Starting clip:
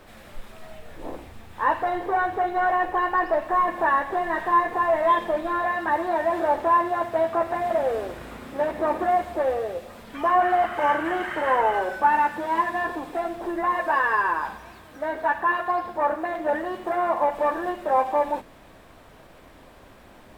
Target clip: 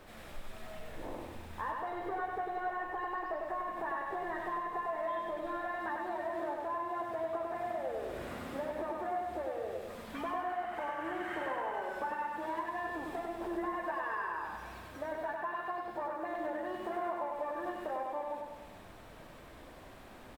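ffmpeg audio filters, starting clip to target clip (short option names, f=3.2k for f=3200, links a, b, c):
-af "acompressor=threshold=-32dB:ratio=6,aecho=1:1:99|198|297|396|495|594|693:0.668|0.361|0.195|0.105|0.0568|0.0307|0.0166,volume=-5dB"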